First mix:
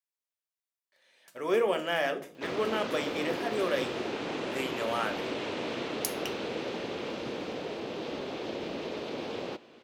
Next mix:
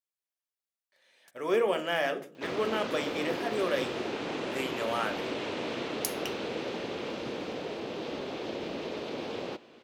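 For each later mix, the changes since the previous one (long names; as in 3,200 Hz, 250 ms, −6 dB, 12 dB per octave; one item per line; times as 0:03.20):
first sound: send off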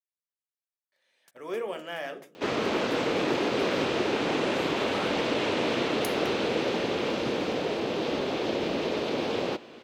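speech −6.5 dB
second sound +7.5 dB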